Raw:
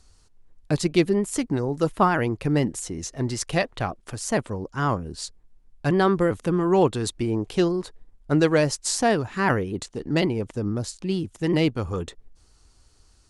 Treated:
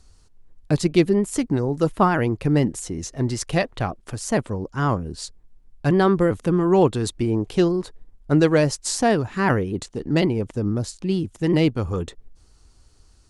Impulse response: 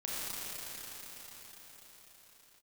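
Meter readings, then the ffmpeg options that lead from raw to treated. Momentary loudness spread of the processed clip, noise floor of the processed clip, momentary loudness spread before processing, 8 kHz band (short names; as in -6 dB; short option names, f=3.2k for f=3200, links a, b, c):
11 LU, -54 dBFS, 11 LU, 0.0 dB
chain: -af "lowshelf=f=500:g=4"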